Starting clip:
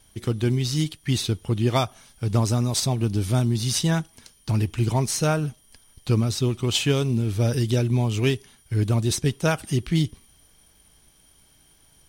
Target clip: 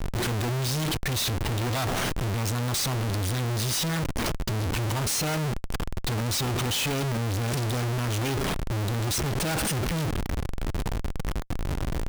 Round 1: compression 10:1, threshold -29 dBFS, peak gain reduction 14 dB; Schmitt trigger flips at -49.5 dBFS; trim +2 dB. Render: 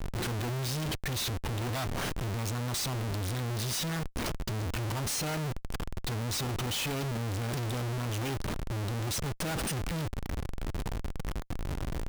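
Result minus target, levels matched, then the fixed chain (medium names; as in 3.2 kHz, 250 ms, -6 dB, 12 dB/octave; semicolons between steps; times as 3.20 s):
compression: peak gain reduction +6 dB
compression 10:1, threshold -22.5 dBFS, peak gain reduction 8 dB; Schmitt trigger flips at -49.5 dBFS; trim +2 dB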